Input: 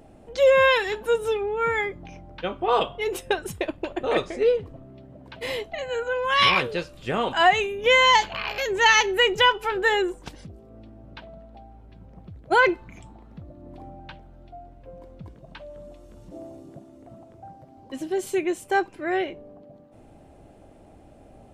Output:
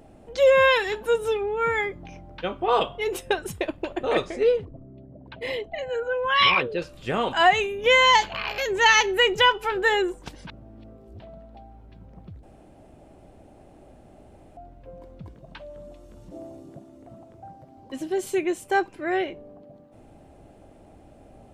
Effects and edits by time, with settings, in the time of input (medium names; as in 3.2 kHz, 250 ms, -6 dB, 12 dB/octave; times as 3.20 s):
4.65–6.82 s: resonances exaggerated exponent 1.5
10.47–11.20 s: reverse
12.43–14.57 s: room tone